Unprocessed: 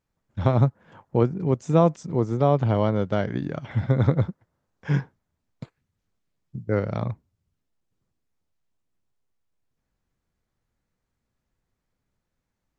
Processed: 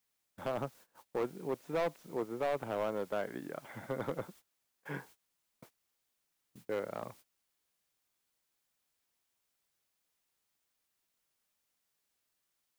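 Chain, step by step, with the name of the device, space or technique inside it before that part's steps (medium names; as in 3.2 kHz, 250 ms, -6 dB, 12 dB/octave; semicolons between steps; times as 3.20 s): aircraft radio (band-pass 370–2600 Hz; hard clipper -20.5 dBFS, distortion -9 dB; white noise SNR 21 dB; gate -48 dBFS, range -19 dB); trim -7.5 dB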